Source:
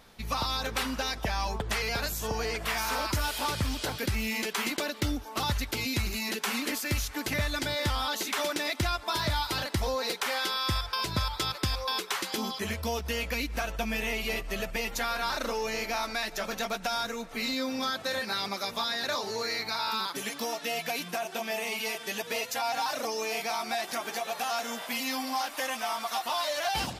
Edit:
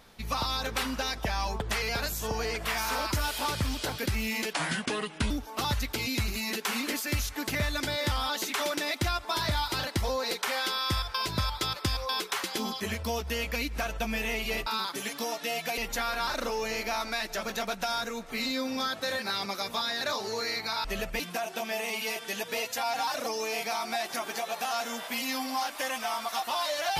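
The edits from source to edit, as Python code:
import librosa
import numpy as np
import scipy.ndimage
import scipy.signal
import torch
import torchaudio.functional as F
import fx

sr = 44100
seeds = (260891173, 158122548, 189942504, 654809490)

y = fx.edit(x, sr, fx.speed_span(start_s=4.54, length_s=0.55, speed=0.72),
    fx.swap(start_s=14.45, length_s=0.35, other_s=19.87, other_length_s=1.11), tone=tone)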